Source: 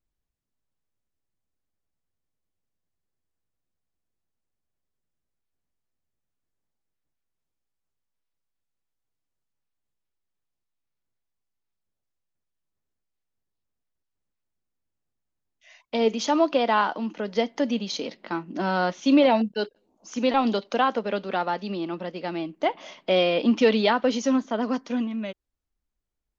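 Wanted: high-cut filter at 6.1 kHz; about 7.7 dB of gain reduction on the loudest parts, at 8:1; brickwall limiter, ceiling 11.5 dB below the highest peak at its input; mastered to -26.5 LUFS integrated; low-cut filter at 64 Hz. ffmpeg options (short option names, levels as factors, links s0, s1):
-af "highpass=64,lowpass=6100,acompressor=threshold=0.0794:ratio=8,volume=2.37,alimiter=limit=0.133:level=0:latency=1"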